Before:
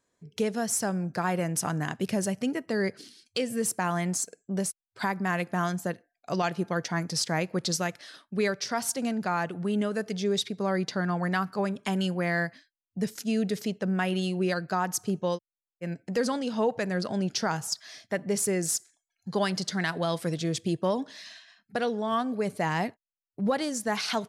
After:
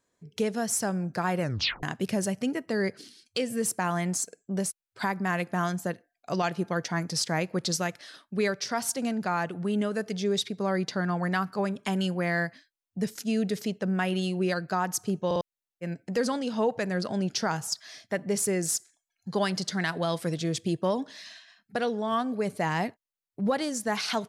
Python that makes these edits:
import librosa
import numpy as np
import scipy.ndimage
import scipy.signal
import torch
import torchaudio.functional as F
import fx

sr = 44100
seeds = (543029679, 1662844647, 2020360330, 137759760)

y = fx.edit(x, sr, fx.tape_stop(start_s=1.42, length_s=0.41),
    fx.stutter_over(start_s=15.26, slice_s=0.05, count=3), tone=tone)